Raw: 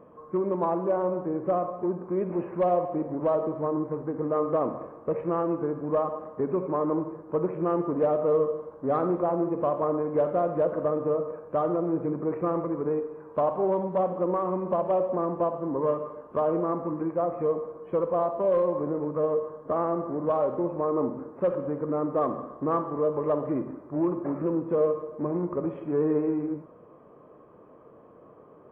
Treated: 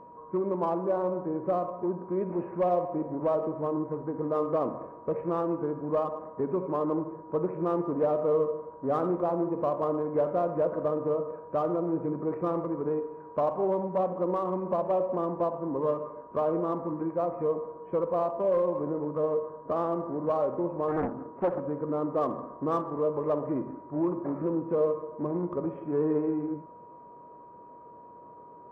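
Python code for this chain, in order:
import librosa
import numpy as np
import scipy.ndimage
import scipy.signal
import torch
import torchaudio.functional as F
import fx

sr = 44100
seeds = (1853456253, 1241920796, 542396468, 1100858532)

y = fx.wiener(x, sr, points=9)
y = y + 10.0 ** (-46.0 / 20.0) * np.sin(2.0 * np.pi * 960.0 * np.arange(len(y)) / sr)
y = fx.doppler_dist(y, sr, depth_ms=0.59, at=(20.88, 21.6))
y = F.gain(torch.from_numpy(y), -2.0).numpy()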